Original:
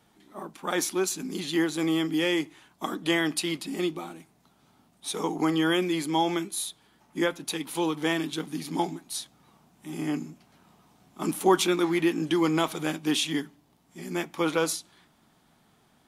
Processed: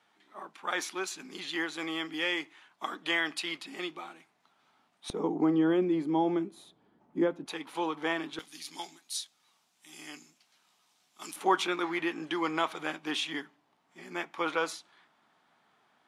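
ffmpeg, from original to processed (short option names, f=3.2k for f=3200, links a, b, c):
-af "asetnsamples=n=441:p=0,asendcmd='5.1 bandpass f 340;7.46 bandpass f 1100;8.39 bandpass f 5000;11.36 bandpass f 1400',bandpass=f=1.8k:t=q:w=0.7:csg=0"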